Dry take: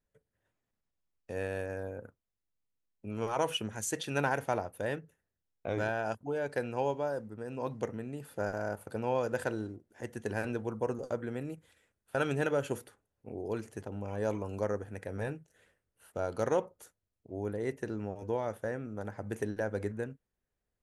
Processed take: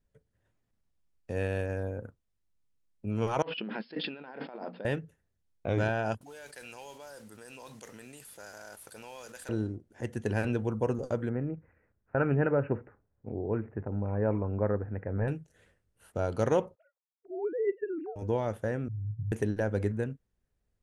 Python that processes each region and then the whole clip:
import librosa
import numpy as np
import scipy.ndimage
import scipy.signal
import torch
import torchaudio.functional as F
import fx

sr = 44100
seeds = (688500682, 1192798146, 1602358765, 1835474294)

y = fx.chain(x, sr, fx.hum_notches(base_hz=60, count=5),
    fx.over_compress(threshold_db=-43.0, ratio=-1.0),
    fx.brickwall_bandpass(low_hz=160.0, high_hz=5300.0), at=(3.42, 4.85))
y = fx.chain(y, sr, fx.differentiator(),
    fx.mod_noise(seeds[0], snr_db=12),
    fx.env_flatten(amount_pct=70), at=(6.21, 9.49))
y = fx.chain(y, sr, fx.lowpass(hz=1900.0, slope=24),
    fx.resample_bad(factor=8, down='none', up='filtered'), at=(11.29, 15.28))
y = fx.chain(y, sr, fx.sine_speech(),
    fx.lowpass(hz=1600.0, slope=12), at=(16.75, 18.16))
y = fx.chain(y, sr, fx.cheby2_lowpass(hz=520.0, order=4, stop_db=60),
    fx.comb(ms=7.2, depth=0.97), at=(18.88, 19.32))
y = fx.dynamic_eq(y, sr, hz=2900.0, q=2.4, threshold_db=-57.0, ratio=4.0, max_db=5)
y = scipy.signal.sosfilt(scipy.signal.butter(2, 11000.0, 'lowpass', fs=sr, output='sos'), y)
y = fx.low_shelf(y, sr, hz=240.0, db=9.5)
y = F.gain(torch.from_numpy(y), 1.0).numpy()